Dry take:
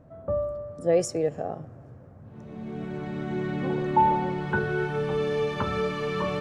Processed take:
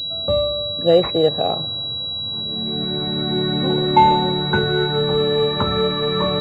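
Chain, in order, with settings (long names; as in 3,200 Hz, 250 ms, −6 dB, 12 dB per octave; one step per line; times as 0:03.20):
0:01.16–0:02.40: parametric band 1,000 Hz +7 dB 1.2 octaves
switching amplifier with a slow clock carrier 3,900 Hz
level +8 dB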